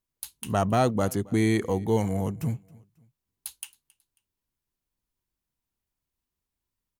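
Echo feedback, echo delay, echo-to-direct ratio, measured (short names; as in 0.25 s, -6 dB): 38%, 0.271 s, -23.5 dB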